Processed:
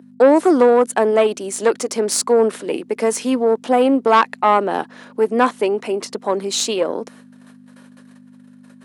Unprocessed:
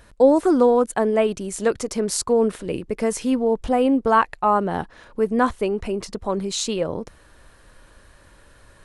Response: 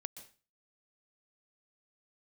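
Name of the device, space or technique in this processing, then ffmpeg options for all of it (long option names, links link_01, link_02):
valve amplifier with mains hum: -af "agate=range=-22dB:threshold=-47dB:ratio=16:detection=peak,aeval=exprs='(tanh(3.55*val(0)+0.4)-tanh(0.4))/3.55':channel_layout=same,aeval=exprs='val(0)+0.0224*(sin(2*PI*50*n/s)+sin(2*PI*2*50*n/s)/2+sin(2*PI*3*50*n/s)/3+sin(2*PI*4*50*n/s)/4+sin(2*PI*5*50*n/s)/5)':channel_layout=same,highpass=frequency=250:width=0.5412,highpass=frequency=250:width=1.3066,lowshelf=frequency=140:gain=-4,volume=7dB"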